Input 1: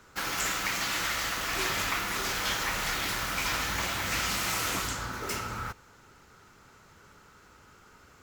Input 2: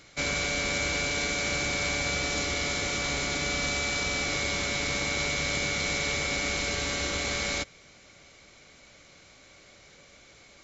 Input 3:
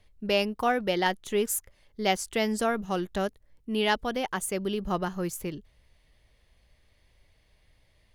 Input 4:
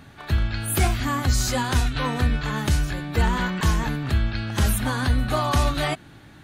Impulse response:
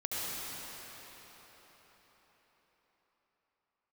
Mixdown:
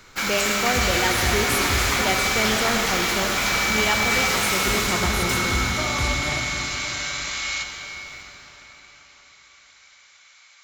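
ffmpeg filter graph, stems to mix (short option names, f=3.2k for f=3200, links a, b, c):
-filter_complex "[0:a]volume=1.5dB,asplit=2[a][b];[b]volume=-5.5dB[c];[1:a]highpass=f=1k:w=0.5412,highpass=f=1k:w=1.3066,volume=0dB,asplit=2[d][e];[e]volume=-8dB[f];[2:a]volume=-3dB,asplit=2[g][h];[h]volume=-5dB[i];[3:a]adelay=450,volume=-9.5dB,asplit=3[j][k][l];[j]atrim=end=2.09,asetpts=PTS-STARTPTS,afade=t=out:st=2.086:d=0.004:c=hsin[m];[k]atrim=start=2.09:end=4.67,asetpts=PTS-STARTPTS,volume=0[n];[l]atrim=start=4.67,asetpts=PTS-STARTPTS,afade=t=in:d=0.004:c=hsin[o];[m][n][o]concat=n=3:v=0:a=1,asplit=2[p][q];[q]volume=-5.5dB[r];[4:a]atrim=start_sample=2205[s];[c][f][i][r]amix=inputs=4:normalize=0[t];[t][s]afir=irnorm=-1:irlink=0[u];[a][d][g][p][u]amix=inputs=5:normalize=0"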